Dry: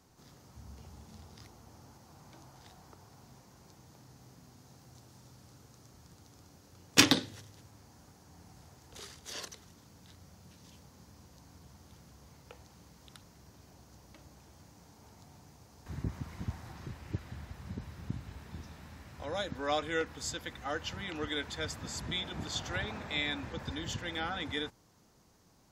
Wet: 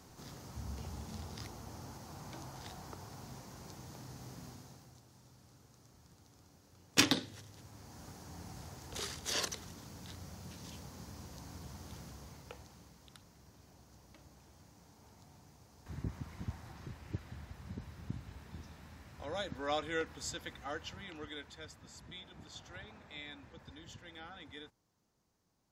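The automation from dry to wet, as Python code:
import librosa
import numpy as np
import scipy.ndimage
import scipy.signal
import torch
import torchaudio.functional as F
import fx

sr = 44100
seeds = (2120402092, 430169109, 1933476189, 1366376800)

y = fx.gain(x, sr, db=fx.line((4.48, 7.0), (5.02, -5.0), (7.14, -5.0), (8.09, 7.0), (12.02, 7.0), (13.09, -3.5), (20.5, -3.5), (21.78, -14.0)))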